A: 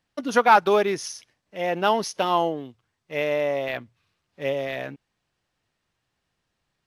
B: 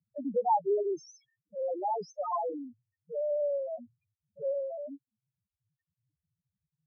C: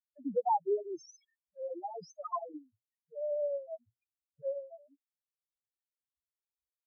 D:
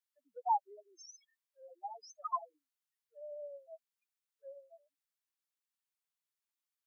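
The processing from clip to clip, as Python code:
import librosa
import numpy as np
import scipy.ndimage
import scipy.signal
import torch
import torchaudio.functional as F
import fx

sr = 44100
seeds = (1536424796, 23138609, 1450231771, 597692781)

y1 = fx.spec_topn(x, sr, count=1)
y1 = scipy.signal.sosfilt(scipy.signal.butter(2, 120.0, 'highpass', fs=sr, output='sos'), y1)
y1 = fx.band_squash(y1, sr, depth_pct=40)
y2 = fx.bin_expand(y1, sr, power=3.0)
y3 = scipy.signal.sosfilt(scipy.signal.butter(4, 890.0, 'highpass', fs=sr, output='sos'), y2)
y3 = y3 * 10.0 ** (2.0 / 20.0)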